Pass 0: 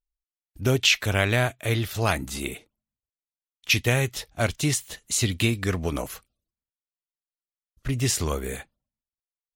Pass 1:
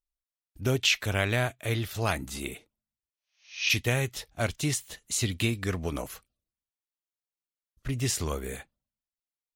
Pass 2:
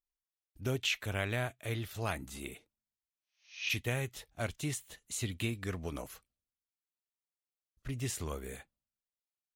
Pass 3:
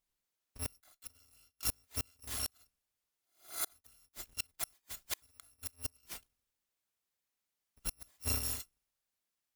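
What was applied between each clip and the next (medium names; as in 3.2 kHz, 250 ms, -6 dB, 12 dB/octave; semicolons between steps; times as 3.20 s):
spectral replace 3.14–3.66 s, 540–6700 Hz both; trim -4.5 dB
dynamic bell 5.1 kHz, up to -6 dB, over -47 dBFS, Q 2.1; trim -7.5 dB
bit-reversed sample order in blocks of 256 samples; one-sided clip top -33 dBFS; inverted gate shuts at -30 dBFS, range -37 dB; trim +7 dB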